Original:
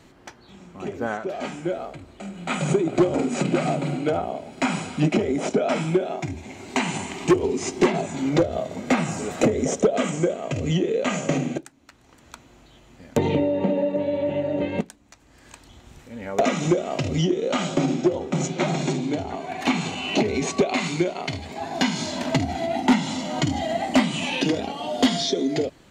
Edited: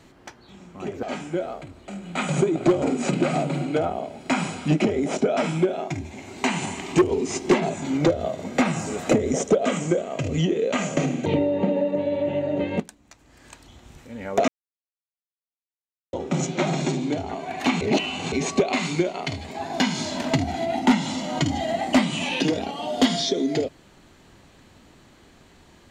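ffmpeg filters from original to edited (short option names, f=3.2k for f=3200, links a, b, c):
-filter_complex "[0:a]asplit=7[a][b][c][d][e][f][g];[a]atrim=end=1.032[h];[b]atrim=start=1.348:end=11.582[i];[c]atrim=start=13.268:end=16.49,asetpts=PTS-STARTPTS,afade=t=out:st=3.218:d=0.004:c=hsin[j];[d]atrim=start=16.49:end=18.14,asetpts=PTS-STARTPTS,volume=0[k];[e]atrim=start=18.14:end=19.822,asetpts=PTS-STARTPTS,afade=t=in:d=0.004:c=hsin[l];[f]atrim=start=19.818:end=20.332,asetpts=PTS-STARTPTS,areverse[m];[g]atrim=start=20.328[n];[h][i]acrossfade=d=0.004:c1=hsin:c2=hsin[o];[j][k][l]concat=n=3:v=0:a=1[p];[o][p]acrossfade=d=0.004:c1=hsin:c2=hsin[q];[q][m]acrossfade=d=0.004:c1=hsin:c2=hsin[r];[r][n]acrossfade=d=0.004:c1=hsin:c2=hsin"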